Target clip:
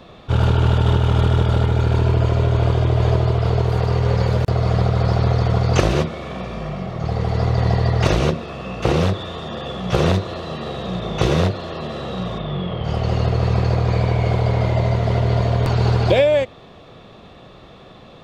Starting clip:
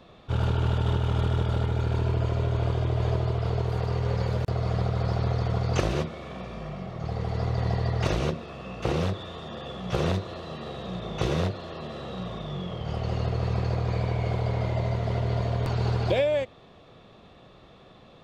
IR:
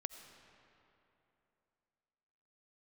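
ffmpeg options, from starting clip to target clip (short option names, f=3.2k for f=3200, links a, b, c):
-filter_complex "[0:a]asettb=1/sr,asplit=3[a][b][c];[a]atrim=end=12.384[d];[b]atrim=start=12.38:end=12.84,asetpts=PTS-STARTPTS,afade=t=in:d=0.004:c=qsin,afade=t=out:st=0.456:d=0.004:c=qsin,lowpass=f=3.9k:w=0.5412,lowpass=f=3.9k:w=1.3066[e];[c]atrim=start=12.836[f];[d][e]acrossfade=d=0.004:c1=hsin:c2=qsin[g];[g][f]acrossfade=d=0.004:c1=qsin:c2=hsin,volume=9dB"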